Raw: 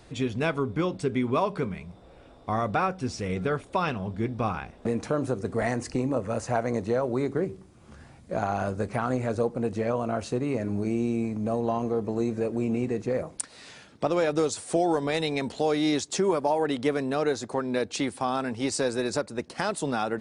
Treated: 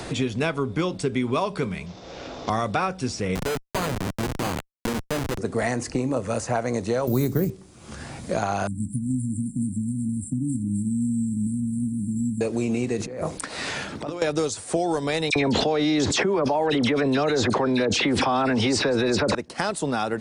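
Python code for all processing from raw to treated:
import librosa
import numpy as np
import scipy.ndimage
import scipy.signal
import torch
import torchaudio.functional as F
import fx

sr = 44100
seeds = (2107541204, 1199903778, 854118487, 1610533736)

y = fx.chain(x, sr, fx.cvsd(bps=32000),
    fx.low_shelf(hz=70.0, db=-12.0), at=(1.86, 2.5))
y = fx.chain(y, sr, fx.schmitt(flips_db=-28.5),
    fx.resample_bad(factor=8, down='none', up='hold'), at=(3.35, 5.38))
y = fx.chain(y, sr, fx.resample_bad(factor=3, down='none', up='hold'),
    fx.bass_treble(bass_db=14, treble_db=9), at=(7.07, 7.5))
y = fx.chain(y, sr, fx.brickwall_bandstop(low_hz=300.0, high_hz=7300.0),
    fx.echo_wet_highpass(ms=261, feedback_pct=52, hz=4900.0, wet_db=-4.5), at=(8.67, 12.41))
y = fx.chain(y, sr, fx.over_compress(threshold_db=-37.0, ratio=-1.0),
    fx.hum_notches(base_hz=60, count=9), at=(12.97, 14.22))
y = fx.chain(y, sr, fx.lowpass(hz=4600.0, slope=12),
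    fx.dispersion(late='lows', ms=56.0, hz=2100.0),
    fx.env_flatten(amount_pct=100), at=(15.3, 19.35))
y = fx.peak_eq(y, sr, hz=7600.0, db=4.5, octaves=2.1)
y = fx.band_squash(y, sr, depth_pct=70)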